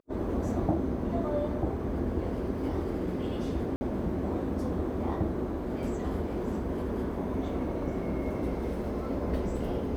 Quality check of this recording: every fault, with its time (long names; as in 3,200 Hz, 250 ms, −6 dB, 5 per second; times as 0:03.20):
0:03.76–0:03.81: drop-out 50 ms